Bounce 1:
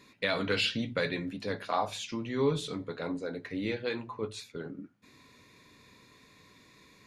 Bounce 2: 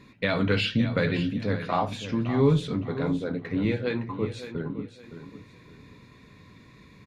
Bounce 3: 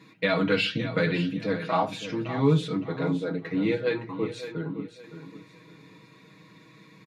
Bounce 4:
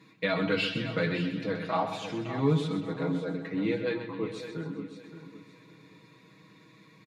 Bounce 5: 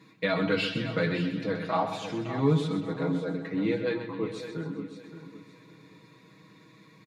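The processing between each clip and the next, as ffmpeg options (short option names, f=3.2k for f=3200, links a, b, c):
-filter_complex "[0:a]bass=f=250:g=10,treble=f=4k:g=-9,asplit=2[a][b];[b]aecho=0:1:565|1130|1695:0.266|0.0772|0.0224[c];[a][c]amix=inputs=2:normalize=0,volume=3.5dB"
-af "highpass=170,aecho=1:1:6.3:0.92,volume=-1.5dB"
-af "aecho=1:1:129|258|387|516|645:0.316|0.158|0.0791|0.0395|0.0198,volume=-4dB"
-af "equalizer=f=2.7k:t=o:w=0.77:g=-2.5,volume=1.5dB"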